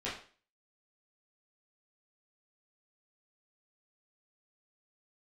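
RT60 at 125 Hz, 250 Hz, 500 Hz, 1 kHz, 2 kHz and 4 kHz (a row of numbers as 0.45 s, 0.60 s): 0.40 s, 0.40 s, 0.45 s, 0.40 s, 0.40 s, 0.40 s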